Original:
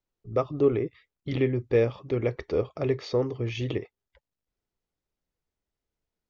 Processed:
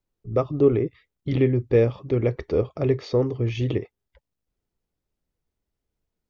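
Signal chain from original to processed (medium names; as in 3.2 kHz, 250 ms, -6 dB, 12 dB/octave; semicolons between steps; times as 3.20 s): bass shelf 470 Hz +7 dB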